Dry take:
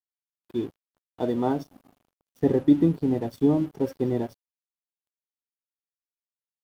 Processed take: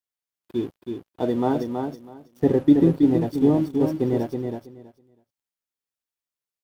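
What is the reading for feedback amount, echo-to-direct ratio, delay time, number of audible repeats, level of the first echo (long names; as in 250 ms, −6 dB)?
17%, −5.5 dB, 324 ms, 2, −5.5 dB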